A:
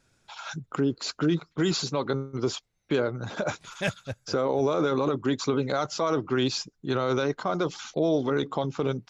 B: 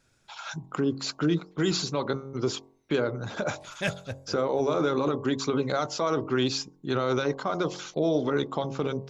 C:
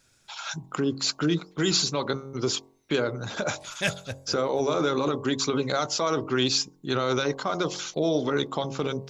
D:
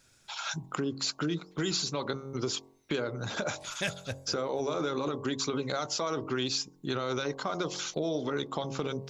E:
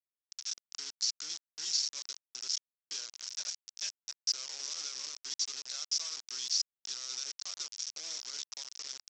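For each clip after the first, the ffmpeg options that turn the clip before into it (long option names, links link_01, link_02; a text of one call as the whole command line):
ffmpeg -i in.wav -af "bandreject=frequency=45.14:width_type=h:width=4,bandreject=frequency=90.28:width_type=h:width=4,bandreject=frequency=135.42:width_type=h:width=4,bandreject=frequency=180.56:width_type=h:width=4,bandreject=frequency=225.7:width_type=h:width=4,bandreject=frequency=270.84:width_type=h:width=4,bandreject=frequency=315.98:width_type=h:width=4,bandreject=frequency=361.12:width_type=h:width=4,bandreject=frequency=406.26:width_type=h:width=4,bandreject=frequency=451.4:width_type=h:width=4,bandreject=frequency=496.54:width_type=h:width=4,bandreject=frequency=541.68:width_type=h:width=4,bandreject=frequency=586.82:width_type=h:width=4,bandreject=frequency=631.96:width_type=h:width=4,bandreject=frequency=677.1:width_type=h:width=4,bandreject=frequency=722.24:width_type=h:width=4,bandreject=frequency=767.38:width_type=h:width=4,bandreject=frequency=812.52:width_type=h:width=4,bandreject=frequency=857.66:width_type=h:width=4,bandreject=frequency=902.8:width_type=h:width=4,bandreject=frequency=947.94:width_type=h:width=4,bandreject=frequency=993.08:width_type=h:width=4,bandreject=frequency=1038.22:width_type=h:width=4,bandreject=frequency=1083.36:width_type=h:width=4,bandreject=frequency=1128.5:width_type=h:width=4" out.wav
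ffmpeg -i in.wav -af "highshelf=frequency=2500:gain=8.5" out.wav
ffmpeg -i in.wav -af "acompressor=threshold=-31dB:ratio=2.5" out.wav
ffmpeg -i in.wav -af "aresample=16000,acrusher=bits=4:mix=0:aa=0.000001,aresample=44100,bandpass=frequency=5500:width_type=q:width=5.8:csg=0,volume=6.5dB" out.wav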